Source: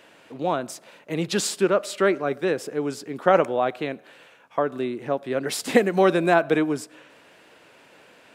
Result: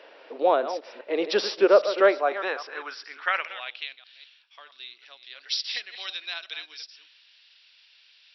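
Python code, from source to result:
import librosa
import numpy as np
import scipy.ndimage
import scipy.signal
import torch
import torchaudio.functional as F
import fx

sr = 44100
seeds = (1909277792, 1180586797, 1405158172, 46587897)

y = fx.reverse_delay(x, sr, ms=202, wet_db=-11)
y = fx.filter_sweep_highpass(y, sr, from_hz=480.0, to_hz=3800.0, start_s=1.86, end_s=4.03, q=2.0)
y = fx.brickwall_bandpass(y, sr, low_hz=180.0, high_hz=5800.0)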